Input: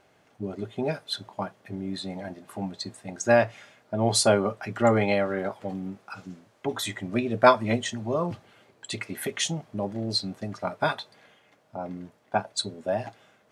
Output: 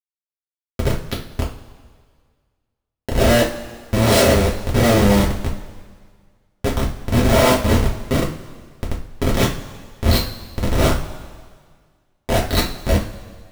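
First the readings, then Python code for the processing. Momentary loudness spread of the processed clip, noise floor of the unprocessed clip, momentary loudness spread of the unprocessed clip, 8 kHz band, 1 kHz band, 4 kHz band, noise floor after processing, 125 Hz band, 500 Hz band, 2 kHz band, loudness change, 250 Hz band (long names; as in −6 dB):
18 LU, −63 dBFS, 17 LU, +5.5 dB, +3.5 dB, +6.5 dB, below −85 dBFS, +13.5 dB, +5.5 dB, +6.0 dB, +8.5 dB, +9.0 dB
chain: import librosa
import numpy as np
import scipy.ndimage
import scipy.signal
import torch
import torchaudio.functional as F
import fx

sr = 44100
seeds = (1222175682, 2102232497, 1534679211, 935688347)

y = fx.spec_swells(x, sr, rise_s=0.81)
y = fx.schmitt(y, sr, flips_db=-18.5)
y = fx.rev_double_slope(y, sr, seeds[0], early_s=0.33, late_s=1.8, knee_db=-17, drr_db=-4.5)
y = y * 10.0 ** (6.5 / 20.0)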